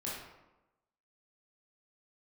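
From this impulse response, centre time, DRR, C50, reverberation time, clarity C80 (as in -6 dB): 65 ms, -7.0 dB, 0.5 dB, 1.0 s, 4.0 dB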